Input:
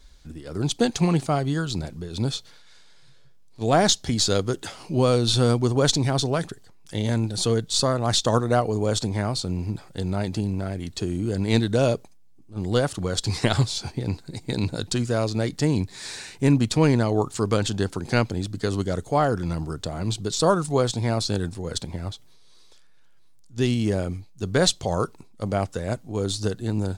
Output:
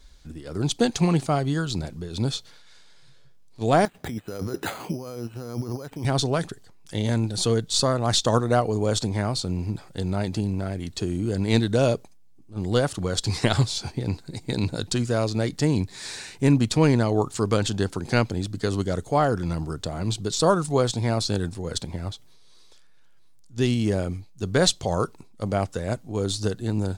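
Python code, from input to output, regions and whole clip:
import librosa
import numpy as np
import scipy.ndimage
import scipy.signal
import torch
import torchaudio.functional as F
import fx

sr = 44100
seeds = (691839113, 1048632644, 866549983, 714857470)

y = fx.chain(x, sr, fx.highpass(hz=140.0, slope=6),
    fx.over_compress(threshold_db=-32.0, ratio=-1.0),
    fx.resample_bad(factor=8, down='filtered', up='hold'), at=(3.85, 6.05))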